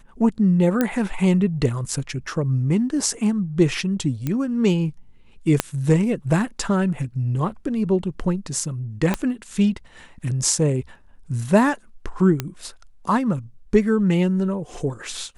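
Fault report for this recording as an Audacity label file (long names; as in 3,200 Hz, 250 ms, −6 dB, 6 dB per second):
0.810000	0.810000	click −7 dBFS
4.270000	4.270000	click −12 dBFS
5.600000	5.600000	click −3 dBFS
9.140000	9.140000	click −8 dBFS
12.400000	12.400000	click −9 dBFS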